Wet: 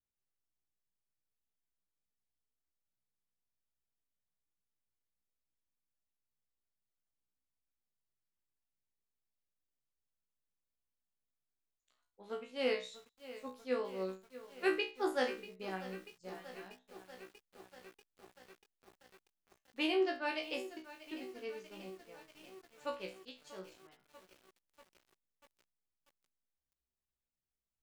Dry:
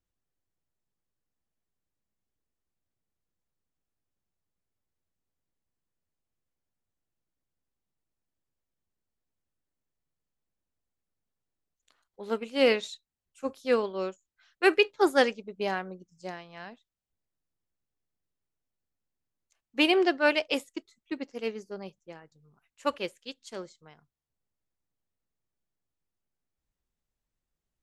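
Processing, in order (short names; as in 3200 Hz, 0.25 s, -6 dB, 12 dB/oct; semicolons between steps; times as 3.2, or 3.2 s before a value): resonator 63 Hz, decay 0.3 s, harmonics all, mix 100%; lo-fi delay 0.639 s, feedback 80%, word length 8-bit, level -15 dB; gain -3.5 dB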